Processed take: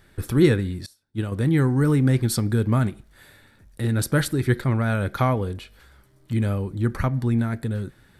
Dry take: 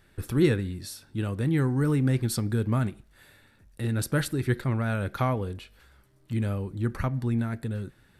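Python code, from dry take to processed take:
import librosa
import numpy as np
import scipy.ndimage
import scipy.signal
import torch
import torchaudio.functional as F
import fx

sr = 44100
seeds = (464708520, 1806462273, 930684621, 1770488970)

y = fx.notch(x, sr, hz=2700.0, q=15.0)
y = fx.upward_expand(y, sr, threshold_db=-44.0, expansion=2.5, at=(0.86, 1.32))
y = F.gain(torch.from_numpy(y), 5.0).numpy()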